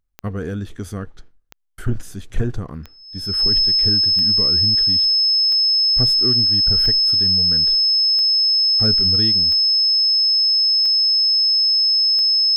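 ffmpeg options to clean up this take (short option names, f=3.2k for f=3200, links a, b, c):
-af "adeclick=t=4,bandreject=f=5.2k:w=30"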